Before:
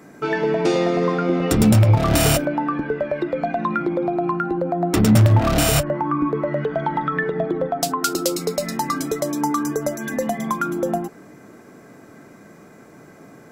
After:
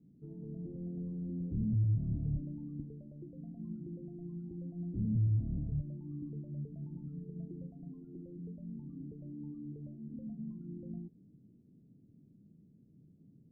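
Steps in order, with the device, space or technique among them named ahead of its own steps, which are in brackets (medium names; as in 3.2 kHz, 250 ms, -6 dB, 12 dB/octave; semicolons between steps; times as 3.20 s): 2.33–2.85 s: bass shelf 150 Hz +7.5 dB; overdriven synthesiser ladder filter (saturation -16 dBFS, distortion -11 dB; four-pole ladder low-pass 240 Hz, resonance 20%); trim -6 dB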